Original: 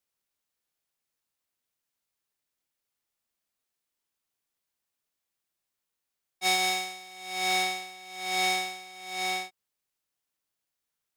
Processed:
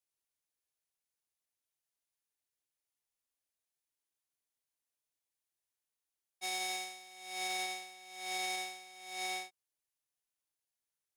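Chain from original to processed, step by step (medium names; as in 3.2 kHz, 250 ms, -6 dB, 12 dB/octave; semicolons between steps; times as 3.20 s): graphic EQ with 31 bands 200 Hz -12 dB, 1.25 kHz -4 dB, 6.3 kHz +3 dB, 10 kHz +6 dB; peak limiter -18 dBFS, peak gain reduction 7 dB; trim -8 dB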